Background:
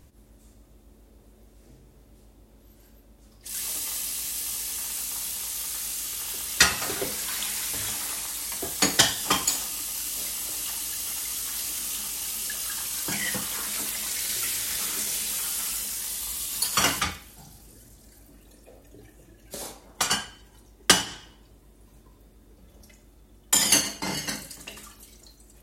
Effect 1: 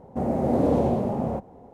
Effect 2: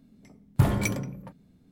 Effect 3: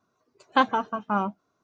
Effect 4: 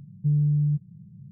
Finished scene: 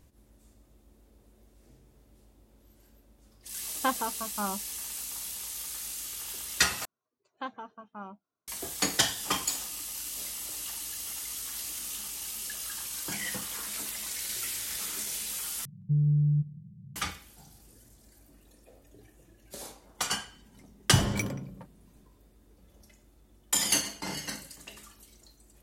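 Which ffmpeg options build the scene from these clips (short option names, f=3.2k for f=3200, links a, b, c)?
-filter_complex "[3:a]asplit=2[a][b];[0:a]volume=-6dB[c];[4:a]asplit=2[d][e];[e]adelay=169.1,volume=-19dB,highshelf=f=4k:g=-3.8[f];[d][f]amix=inputs=2:normalize=0[g];[c]asplit=3[h][i][j];[h]atrim=end=6.854[k];[b]atrim=end=1.63,asetpts=PTS-STARTPTS,volume=-17.5dB[l];[i]atrim=start=8.476:end=15.654[m];[g]atrim=end=1.31,asetpts=PTS-STARTPTS,volume=-3dB[n];[j]atrim=start=16.956[o];[a]atrim=end=1.63,asetpts=PTS-STARTPTS,volume=-8dB,afade=t=in:d=0.004:c=hsin,afade=t=out:st=1.626:d=0.004:c=hsin,adelay=3280[p];[2:a]atrim=end=1.71,asetpts=PTS-STARTPTS,volume=-3.5dB,afade=t=in:d=0.004:c=hsin,afade=t=out:st=1.706:d=0.004:c=hsin,adelay=20340[q];[k][l]acrossfade=d=0.004:c1=hsin:c2=hsin[r];[r][m]acrossfade=d=0.004:c1=hsin:c2=hsin[s];[s][n]acrossfade=d=0.004:c1=hsin:c2=hsin[t];[t][o]acrossfade=d=0.004:c1=hsin:c2=hsin[u];[u][p][q]amix=inputs=3:normalize=0"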